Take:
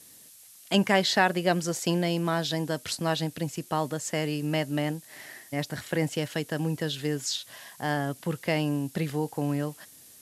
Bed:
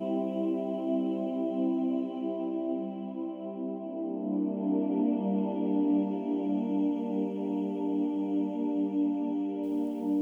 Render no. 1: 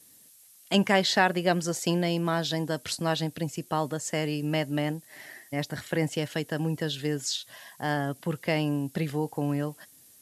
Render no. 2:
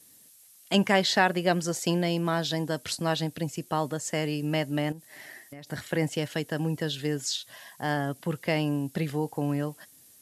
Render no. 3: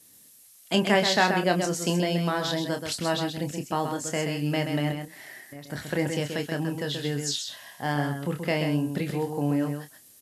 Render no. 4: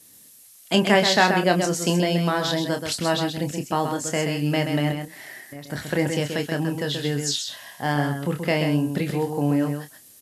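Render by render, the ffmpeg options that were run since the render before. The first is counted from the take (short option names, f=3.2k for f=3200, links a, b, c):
-af "afftdn=nr=6:nf=-52"
-filter_complex "[0:a]asettb=1/sr,asplit=3[a][b][c];[a]atrim=end=4.924[d];[b]atrim=start=4.92:end=5.67,asetpts=PTS-STARTPTS,afade=t=in:d=0.004:c=qsin,afade=t=out:st=0.746:d=0.004:c=qsin,acompressor=threshold=-39dB:ratio=10:attack=3.2:release=140:knee=1:detection=peak[e];[c]atrim=start=5.666[f];[d][e]acrossfade=d=0.004:c1=hsin:c2=qsin[g];[g][f]acrossfade=d=0.004:c1=qsin:c2=hsin"
-filter_complex "[0:a]asplit=2[a][b];[b]adelay=28,volume=-7.5dB[c];[a][c]amix=inputs=2:normalize=0,asplit=2[d][e];[e]aecho=0:1:129:0.473[f];[d][f]amix=inputs=2:normalize=0"
-af "volume=4dB"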